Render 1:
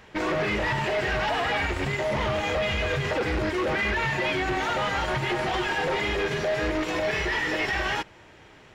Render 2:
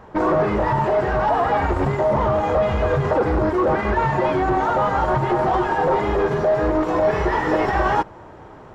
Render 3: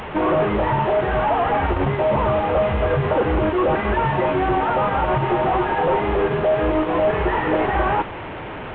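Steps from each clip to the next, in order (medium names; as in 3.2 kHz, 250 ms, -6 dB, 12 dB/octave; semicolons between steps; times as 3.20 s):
resonant high shelf 1.6 kHz -13.5 dB, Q 1.5; gain riding 0.5 s; trim +7.5 dB
one-bit delta coder 16 kbps, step -25.5 dBFS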